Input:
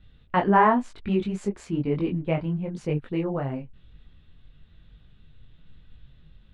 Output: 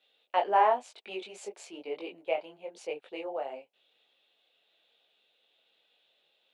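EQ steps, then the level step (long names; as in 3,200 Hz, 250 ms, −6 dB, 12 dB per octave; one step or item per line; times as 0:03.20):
high-pass filter 530 Hz 24 dB per octave
flat-topped bell 1,400 Hz −10 dB 1.2 octaves
0.0 dB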